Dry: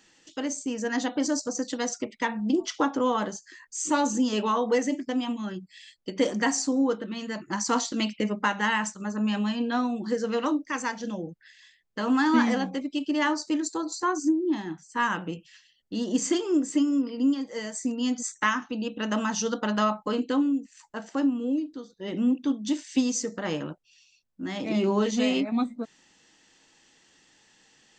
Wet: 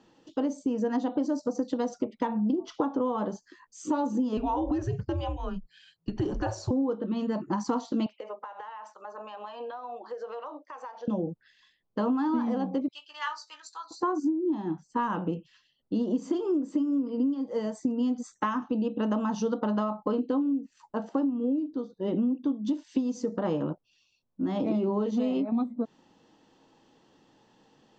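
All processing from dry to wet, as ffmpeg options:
-filter_complex "[0:a]asettb=1/sr,asplit=3[a][b][c];[a]atrim=end=4.374[d];[b]atrim=start=4.37:end=6.71,asetpts=PTS-STARTPTS,afade=t=in:d=0.004:c=qsin,afade=t=out:st=2.336:d=0.004:c=qsin,equalizer=f=260:w=3.2:g=-7,acompressor=threshold=-28dB:ratio=2.5:attack=3.2:release=140:knee=1:detection=peak,afreqshift=-170[e];[c]atrim=start=6.706[f];[d][e]acrossfade=d=0.004:c1=hsin:c2=qsin[g];[g][f]acrossfade=d=0.004:c1=qsin:c2=hsin,asettb=1/sr,asplit=3[h][i][j];[h]atrim=end=8.064[k];[i]atrim=start=8.06:end=11.08,asetpts=PTS-STARTPTS,afade=t=in:d=0.004:c=qsin,afade=t=out:st=3.016:d=0.004:c=qsin,highpass=f=580:w=0.5412,highpass=f=580:w=1.3066,highshelf=f=4.5k:g=-11,acompressor=threshold=-38dB:ratio=20:attack=3.2:release=140:knee=1:detection=peak[l];[j]atrim=start=11.076[m];[k][l]acrossfade=d=0.004:c1=hsin:c2=qsin[n];[n][m]acrossfade=d=0.004:c1=qsin:c2=hsin,asettb=1/sr,asplit=3[o][p][q];[o]atrim=end=12.884[r];[p]atrim=start=12.88:end=13.91,asetpts=PTS-STARTPTS,afade=t=in:d=0.004:c=qsin,afade=t=out:st=1.026:d=0.004:c=qsin,highpass=f=1.3k:w=0.5412,highpass=f=1.3k:w=1.3066,asplit=2[s][t];[t]adelay=17,volume=-8dB[u];[s][u]amix=inputs=2:normalize=0,atrim=end_sample=45423[v];[q]atrim=start=13.906[w];[r][v]acrossfade=d=0.004:c1=hsin:c2=qsin[x];[x][w]acrossfade=d=0.004:c1=qsin:c2=hsin,equalizer=f=125:t=o:w=1:g=5,equalizer=f=250:t=o:w=1:g=5,equalizer=f=500:t=o:w=1:g=5,equalizer=f=1k:t=o:w=1:g=6,equalizer=f=2k:t=o:w=1:g=-12,acompressor=threshold=-24dB:ratio=10,lowpass=3.2k"

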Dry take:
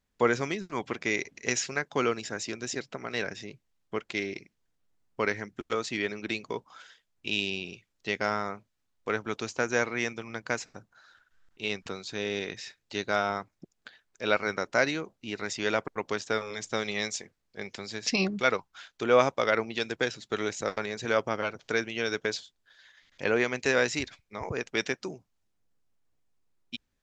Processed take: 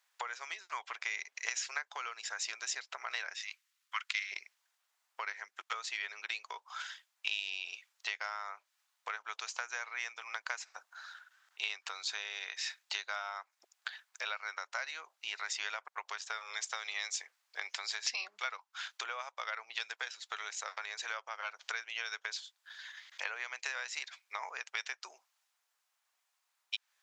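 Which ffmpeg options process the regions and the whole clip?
-filter_complex "[0:a]asettb=1/sr,asplit=3[a][b][c];[a]atrim=end=3.344[d];[b]atrim=start=3.34:end=4.32,asetpts=PTS-STARTPTS,afade=t=in:d=0.004:c=qsin,afade=t=out:st=0.976:d=0.004:c=qsin,highpass=f=1.2k:w=0.5412,highpass=f=1.2k:w=1.3066,bandreject=f=1.6k:w=29[e];[c]atrim=start=4.316[f];[d][e]acrossfade=d=0.004:c1=hsin:c2=qsin[g];[g][f]acrossfade=d=0.004:c1=qsin:c2=hsin,acompressor=threshold=-40dB:ratio=12,highpass=f=850:w=0.5412,highpass=f=850:w=1.3066,volume=8.5dB"

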